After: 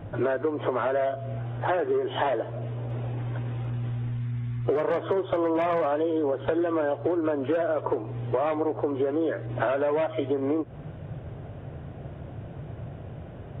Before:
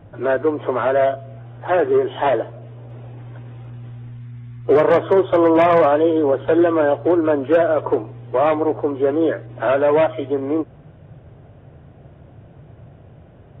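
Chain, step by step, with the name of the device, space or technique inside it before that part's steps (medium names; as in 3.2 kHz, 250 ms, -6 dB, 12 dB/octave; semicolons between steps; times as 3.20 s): serial compression, leveller first (compression 2:1, threshold -18 dBFS, peak gain reduction 5 dB; compression 6:1, threshold -28 dBFS, peak gain reduction 12.5 dB); trim +4.5 dB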